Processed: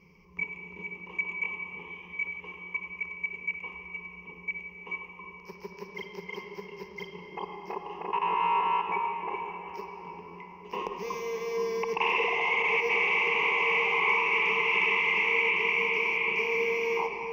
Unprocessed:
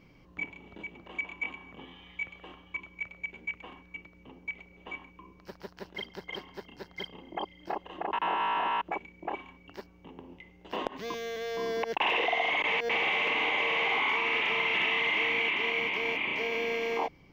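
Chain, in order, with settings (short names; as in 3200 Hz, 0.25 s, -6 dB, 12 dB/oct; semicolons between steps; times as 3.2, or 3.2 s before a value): ripple EQ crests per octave 0.8, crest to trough 17 dB; on a send: reverb RT60 5.2 s, pre-delay 44 ms, DRR 3 dB; on the sum: gain -5 dB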